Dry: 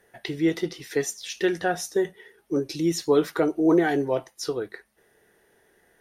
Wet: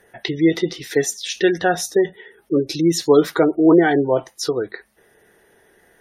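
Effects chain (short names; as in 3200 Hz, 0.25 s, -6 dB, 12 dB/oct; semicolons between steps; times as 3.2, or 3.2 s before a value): dynamic EQ 3700 Hz, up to +4 dB, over -56 dBFS, Q 4.6; spectral gate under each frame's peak -30 dB strong; gain +7 dB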